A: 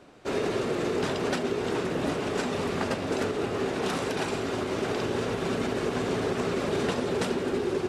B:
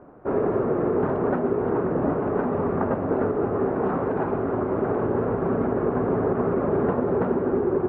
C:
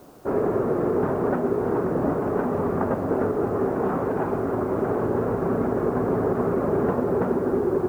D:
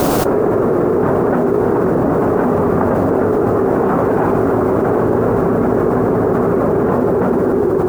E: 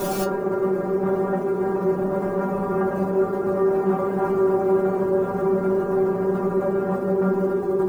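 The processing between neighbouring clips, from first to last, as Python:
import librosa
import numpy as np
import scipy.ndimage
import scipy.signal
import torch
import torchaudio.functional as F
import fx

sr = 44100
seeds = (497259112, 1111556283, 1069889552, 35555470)

y1 = scipy.signal.sosfilt(scipy.signal.butter(4, 1300.0, 'lowpass', fs=sr, output='sos'), x)
y1 = y1 * 10.0 ** (5.5 / 20.0)
y2 = fx.quant_dither(y1, sr, seeds[0], bits=10, dither='triangular')
y3 = fx.env_flatten(y2, sr, amount_pct=100)
y3 = y3 * 10.0 ** (6.0 / 20.0)
y4 = fx.stiff_resonator(y3, sr, f0_hz=190.0, decay_s=0.25, stiffness=0.002)
y4 = y4 * 10.0 ** (2.5 / 20.0)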